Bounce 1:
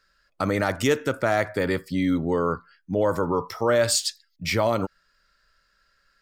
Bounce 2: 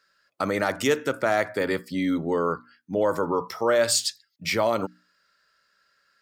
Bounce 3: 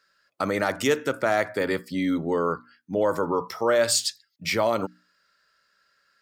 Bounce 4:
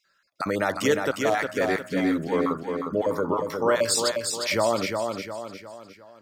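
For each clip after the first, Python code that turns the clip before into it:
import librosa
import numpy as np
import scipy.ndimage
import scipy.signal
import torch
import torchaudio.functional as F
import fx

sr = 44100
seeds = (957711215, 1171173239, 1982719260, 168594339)

y1 = scipy.signal.sosfilt(scipy.signal.bessel(2, 190.0, 'highpass', norm='mag', fs=sr, output='sos'), x)
y1 = fx.hum_notches(y1, sr, base_hz=60, count=5)
y2 = y1
y3 = fx.spec_dropout(y2, sr, seeds[0], share_pct=22)
y3 = fx.echo_feedback(y3, sr, ms=356, feedback_pct=44, wet_db=-5.0)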